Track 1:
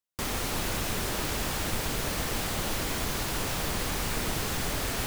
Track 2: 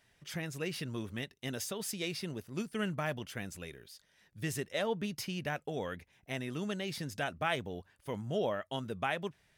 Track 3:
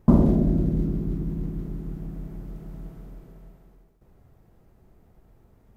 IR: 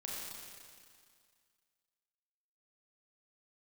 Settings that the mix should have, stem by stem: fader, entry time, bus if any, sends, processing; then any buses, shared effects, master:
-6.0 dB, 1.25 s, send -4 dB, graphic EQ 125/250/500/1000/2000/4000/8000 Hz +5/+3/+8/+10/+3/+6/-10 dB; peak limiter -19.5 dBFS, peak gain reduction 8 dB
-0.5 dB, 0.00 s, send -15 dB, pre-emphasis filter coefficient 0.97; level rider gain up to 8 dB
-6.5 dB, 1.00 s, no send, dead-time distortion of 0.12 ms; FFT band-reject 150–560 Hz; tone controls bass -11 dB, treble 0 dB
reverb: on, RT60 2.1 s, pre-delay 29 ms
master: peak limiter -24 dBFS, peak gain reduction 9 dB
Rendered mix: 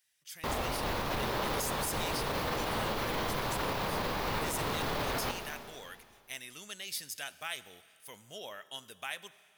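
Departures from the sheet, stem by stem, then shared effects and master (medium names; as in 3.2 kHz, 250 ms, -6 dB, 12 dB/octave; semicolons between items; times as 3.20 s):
stem 1: entry 1.25 s -> 0.25 s; stem 3: entry 1.00 s -> 0.40 s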